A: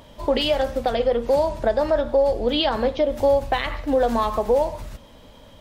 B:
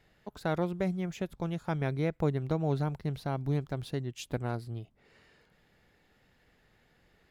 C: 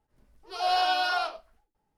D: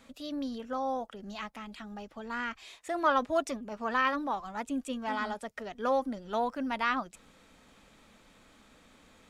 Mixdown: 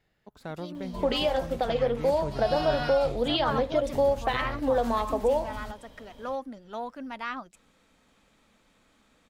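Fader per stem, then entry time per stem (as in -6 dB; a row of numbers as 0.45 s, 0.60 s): -5.5 dB, -7.0 dB, -8.0 dB, -5.0 dB; 0.75 s, 0.00 s, 1.80 s, 0.40 s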